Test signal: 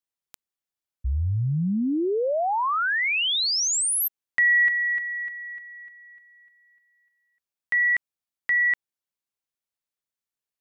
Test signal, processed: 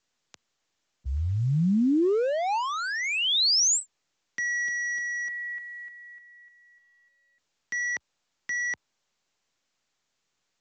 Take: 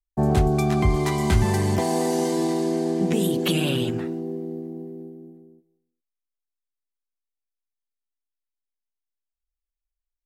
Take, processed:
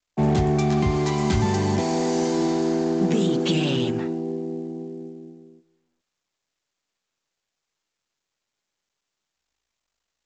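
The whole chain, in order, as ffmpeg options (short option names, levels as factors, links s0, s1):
-filter_complex "[0:a]acrossover=split=120|440|3500[s0][s1][s2][s3];[s0]highpass=f=71:w=0.5412,highpass=f=71:w=1.3066[s4];[s2]asoftclip=type=hard:threshold=0.0224[s5];[s4][s1][s5][s3]amix=inputs=4:normalize=0,adynamicequalizer=threshold=0.00282:dfrequency=860:dqfactor=3.8:tfrequency=860:tqfactor=3.8:attack=5:release=100:ratio=0.438:range=2.5:mode=boostabove:tftype=bell,volume=1.26" -ar 16000 -c:a pcm_mulaw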